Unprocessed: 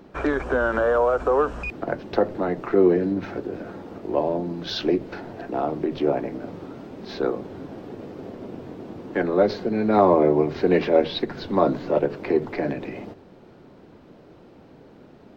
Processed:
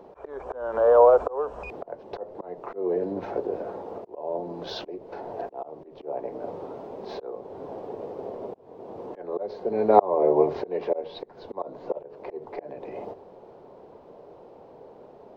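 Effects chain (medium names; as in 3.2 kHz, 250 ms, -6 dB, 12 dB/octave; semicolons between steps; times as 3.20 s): slow attack 483 ms; high-order bell 650 Hz +13.5 dB; trim -8 dB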